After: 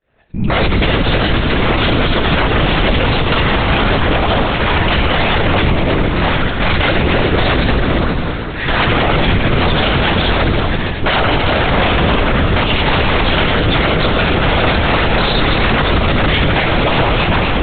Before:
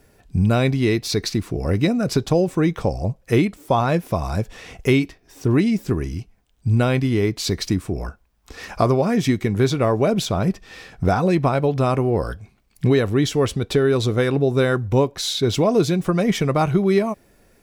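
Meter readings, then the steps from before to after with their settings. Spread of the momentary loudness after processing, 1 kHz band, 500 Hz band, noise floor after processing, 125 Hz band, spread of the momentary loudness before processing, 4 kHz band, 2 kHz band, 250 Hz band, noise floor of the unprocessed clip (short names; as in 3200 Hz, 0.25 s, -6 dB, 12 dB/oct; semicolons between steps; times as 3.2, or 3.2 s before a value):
2 LU, +11.0 dB, +3.5 dB, -19 dBFS, +5.0 dB, 9 LU, +13.5 dB, +15.5 dB, +3.5 dB, -59 dBFS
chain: opening faded in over 0.71 s; Bessel high-pass 150 Hz, order 2; low shelf 440 Hz -6.5 dB; wrapped overs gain 17.5 dB; echoes that change speed 0.468 s, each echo -4 st, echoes 2; plate-style reverb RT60 2.9 s, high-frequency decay 0.95×, DRR 2.5 dB; LPC vocoder at 8 kHz whisper; maximiser +19 dB; gain -3.5 dB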